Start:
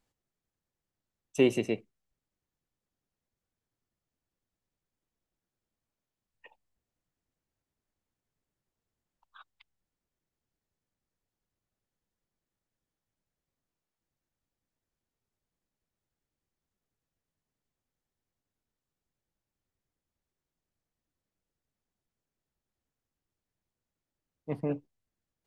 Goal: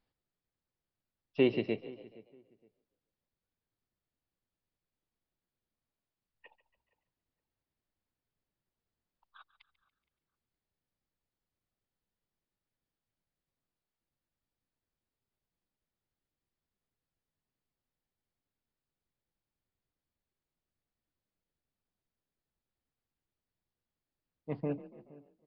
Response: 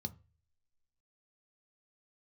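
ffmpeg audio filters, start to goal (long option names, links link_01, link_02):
-filter_complex "[0:a]asplit=2[link_01][link_02];[link_02]adelay=467,lowpass=frequency=1900:poles=1,volume=-21dB,asplit=2[link_03][link_04];[link_04]adelay=467,lowpass=frequency=1900:poles=1,volume=0.23[link_05];[link_03][link_05]amix=inputs=2:normalize=0[link_06];[link_01][link_06]amix=inputs=2:normalize=0,aresample=11025,aresample=44100,asplit=2[link_07][link_08];[link_08]asplit=4[link_09][link_10][link_11][link_12];[link_09]adelay=142,afreqshift=33,volume=-17dB[link_13];[link_10]adelay=284,afreqshift=66,volume=-23.2dB[link_14];[link_11]adelay=426,afreqshift=99,volume=-29.4dB[link_15];[link_12]adelay=568,afreqshift=132,volume=-35.6dB[link_16];[link_13][link_14][link_15][link_16]amix=inputs=4:normalize=0[link_17];[link_07][link_17]amix=inputs=2:normalize=0,volume=-3dB"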